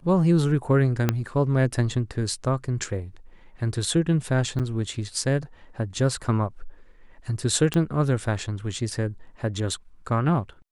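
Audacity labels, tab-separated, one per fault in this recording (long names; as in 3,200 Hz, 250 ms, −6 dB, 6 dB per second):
1.090000	1.090000	click −7 dBFS
4.590000	4.600000	drop-out 7.5 ms
7.740000	7.740000	click −12 dBFS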